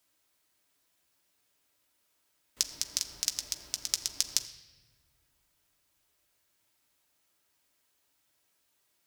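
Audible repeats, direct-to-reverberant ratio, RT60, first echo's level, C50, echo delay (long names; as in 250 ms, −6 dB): no echo audible, 4.0 dB, 1.4 s, no echo audible, 12.5 dB, no echo audible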